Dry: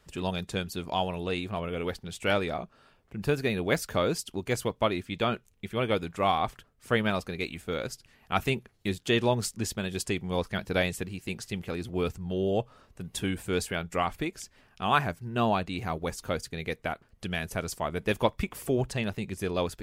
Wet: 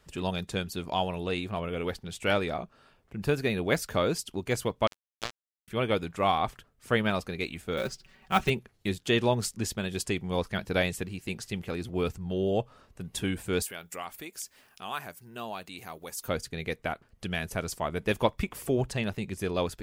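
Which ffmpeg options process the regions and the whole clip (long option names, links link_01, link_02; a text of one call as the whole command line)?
ffmpeg -i in.wav -filter_complex "[0:a]asettb=1/sr,asplit=3[link_01][link_02][link_03];[link_01]atrim=end=4.874[link_04];[link_02]atrim=start=4.87:end=5.68,asetpts=PTS-STARTPTS,afade=type=in:duration=0.004:curve=qsin,afade=type=out:start_time=0.806:duration=0.004:curve=qsin,highpass=frequency=240:poles=1,aecho=1:1:7.5:0.39,atrim=end_sample=35721,acrusher=bits=2:mix=0:aa=0.5[link_05];[link_03]atrim=start=5.676[link_06];[link_04][link_05]acrossfade=duration=0.004:curve1=hsin:curve2=qsin[link_07];[link_07][link_06]acrossfade=duration=0.004:curve1=qsin:curve2=hsin,asettb=1/sr,asplit=3[link_08][link_09][link_10];[link_08]atrim=end=7.774[link_11];[link_09]atrim=start=7.77:end=8.5,asetpts=PTS-STARTPTS,afade=type=in:duration=0.004:curve=qsin,afade=type=out:start_time=0.726:duration=0.004:curve=qsin,lowpass=6200,aecho=1:1:5.3:0.87,atrim=end_sample=32193,acrusher=bits=5:mode=log:mix=0:aa=0.000001[link_12];[link_10]atrim=start=8.496[link_13];[link_11][link_12]acrossfade=duration=0.004:curve1=hsin:curve2=qsin[link_14];[link_14][link_13]acrossfade=duration=0.004:curve1=qsin:curve2=hsin,asettb=1/sr,asplit=3[link_15][link_16][link_17];[link_15]atrim=end=13.624[link_18];[link_16]atrim=start=13.62:end=16.28,asetpts=PTS-STARTPTS,afade=type=in:duration=0.004:curve=qsin,afade=type=out:start_time=2.656:duration=0.004:curve=qsin,acompressor=threshold=-51dB:ratio=1.5:attack=3.2:release=140:knee=1:detection=peak,aemphasis=mode=production:type=bsi[link_19];[link_17]atrim=start=16.276[link_20];[link_18][link_19]acrossfade=duration=0.004:curve1=hsin:curve2=qsin[link_21];[link_21][link_20]acrossfade=duration=0.004:curve1=qsin:curve2=hsin" out.wav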